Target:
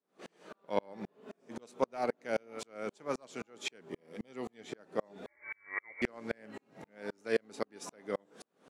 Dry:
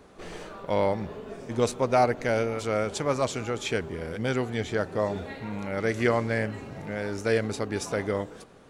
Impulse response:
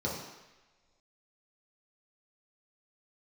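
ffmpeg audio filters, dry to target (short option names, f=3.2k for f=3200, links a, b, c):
-filter_complex "[0:a]highpass=f=180:w=0.5412,highpass=f=180:w=1.3066,aeval=exprs='0.266*(cos(1*acos(clip(val(0)/0.266,-1,1)))-cos(1*PI/2))+0.0211*(cos(3*acos(clip(val(0)/0.266,-1,1)))-cos(3*PI/2))':c=same,asettb=1/sr,asplit=3[a][b][c];[a]atrim=end=3.924[d];[b]atrim=start=3.92:end=4.56,asetpts=PTS-STARTPTS,afade=t=in:d=0.004:c=qsin,afade=t=out:st=0.636:d=0.004:c=qsin,asuperstop=centerf=1500:order=4:qfactor=6.2[e];[c]atrim=start=4.556[f];[d][e]acrossfade=d=0.004:c1=hsin:c2=qsin[g];[g][f]acrossfade=d=0.004:c1=qsin:c2=hsin,asettb=1/sr,asplit=3[h][i][j];[h]atrim=end=5.264[k];[i]atrim=start=5.26:end=6.02,asetpts=PTS-STARTPTS,afade=t=in:d=0.004:c=qsin,afade=t=out:st=0.756:d=0.004:c=qsin,lowpass=f=2.1k:t=q:w=0.5098,lowpass=f=2.1k:t=q:w=0.6013,lowpass=f=2.1k:t=q:w=0.9,lowpass=f=2.1k:t=q:w=2.563,afreqshift=-2500[l];[j]atrim=start=6.016[m];[k][l]acrossfade=d=0.004:c1=hsin:c2=qsin[n];[n][m]acrossfade=d=0.004:c1=qsin:c2=hsin,aeval=exprs='val(0)*pow(10,-39*if(lt(mod(-3.8*n/s,1),2*abs(-3.8)/1000),1-mod(-3.8*n/s,1)/(2*abs(-3.8)/1000),(mod(-3.8*n/s,1)-2*abs(-3.8)/1000)/(1-2*abs(-3.8)/1000))/20)':c=same"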